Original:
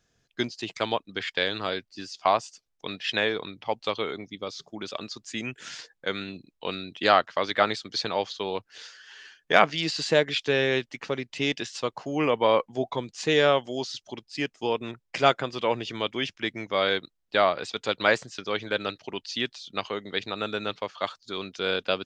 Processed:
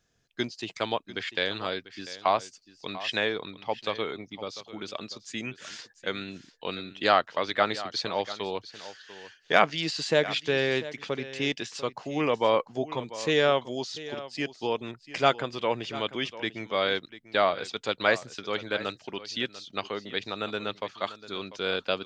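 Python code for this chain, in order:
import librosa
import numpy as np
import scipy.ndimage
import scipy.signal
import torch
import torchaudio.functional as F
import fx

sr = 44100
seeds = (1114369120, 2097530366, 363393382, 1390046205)

y = x + 10.0 ** (-15.5 / 20.0) * np.pad(x, (int(694 * sr / 1000.0), 0))[:len(x)]
y = y * librosa.db_to_amplitude(-2.0)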